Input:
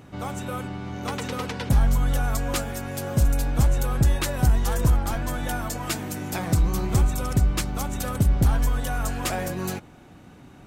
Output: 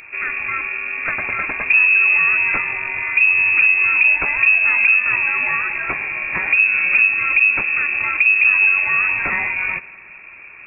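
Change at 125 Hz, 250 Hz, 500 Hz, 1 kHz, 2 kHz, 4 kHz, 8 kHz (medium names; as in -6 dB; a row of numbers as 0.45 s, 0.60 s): under -20 dB, under -10 dB, -6.0 dB, +3.5 dB, +24.0 dB, no reading, under -40 dB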